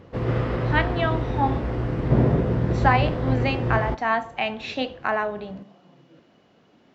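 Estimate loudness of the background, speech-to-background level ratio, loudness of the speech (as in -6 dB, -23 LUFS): -24.5 LUFS, -1.5 dB, -26.0 LUFS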